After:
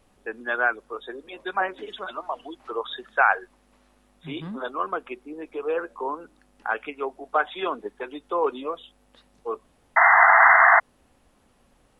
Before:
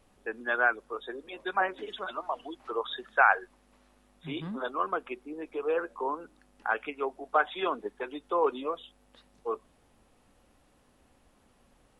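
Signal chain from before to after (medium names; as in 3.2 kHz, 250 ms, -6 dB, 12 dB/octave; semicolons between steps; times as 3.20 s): painted sound noise, 9.96–10.80 s, 650–2100 Hz -17 dBFS; trim +2.5 dB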